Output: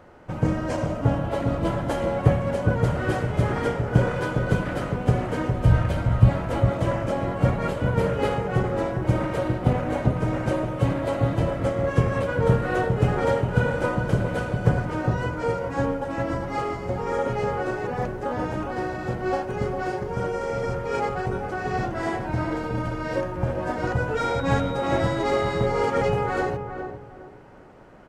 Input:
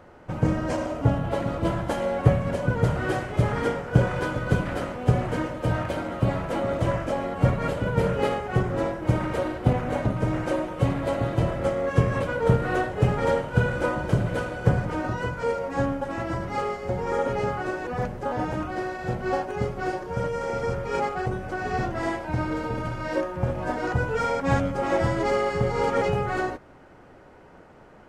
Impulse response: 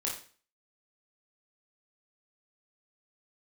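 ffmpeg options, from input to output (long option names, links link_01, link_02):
-filter_complex "[0:a]asplit=3[link_01][link_02][link_03];[link_01]afade=type=out:start_time=5.51:duration=0.02[link_04];[link_02]asubboost=boost=6.5:cutoff=130,afade=type=in:start_time=5.51:duration=0.02,afade=type=out:start_time=6.28:duration=0.02[link_05];[link_03]afade=type=in:start_time=6.28:duration=0.02[link_06];[link_04][link_05][link_06]amix=inputs=3:normalize=0,asplit=2[link_07][link_08];[link_08]adelay=406,lowpass=frequency=1000:poles=1,volume=-5.5dB,asplit=2[link_09][link_10];[link_10]adelay=406,lowpass=frequency=1000:poles=1,volume=0.32,asplit=2[link_11][link_12];[link_12]adelay=406,lowpass=frequency=1000:poles=1,volume=0.32,asplit=2[link_13][link_14];[link_14]adelay=406,lowpass=frequency=1000:poles=1,volume=0.32[link_15];[link_07][link_09][link_11][link_13][link_15]amix=inputs=5:normalize=0,asettb=1/sr,asplit=3[link_16][link_17][link_18];[link_16]atrim=end=24.174[link_19];[link_17]atrim=start=24.17:end=25.66,asetpts=PTS-STARTPTS,afade=type=in:duration=0.004:curve=qsin,afade=type=out:start_time=1.486:duration=0.004:curve=qsin,aeval=exprs='val(0)+0.00708*sin(2*PI*3800*n/s)':channel_layout=same[link_20];[link_18]atrim=start=25.656[link_21];[link_19][link_20]acrossfade=duration=0.004:curve1=hsin:curve2=qsin[link_22];[link_22][link_21]acrossfade=duration=0.004:curve1=qsin:curve2=hsin"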